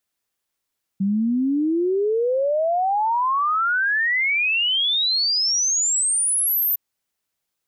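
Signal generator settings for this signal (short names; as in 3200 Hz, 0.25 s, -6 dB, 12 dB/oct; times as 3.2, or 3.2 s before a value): log sweep 190 Hz -> 14000 Hz 5.76 s -17.5 dBFS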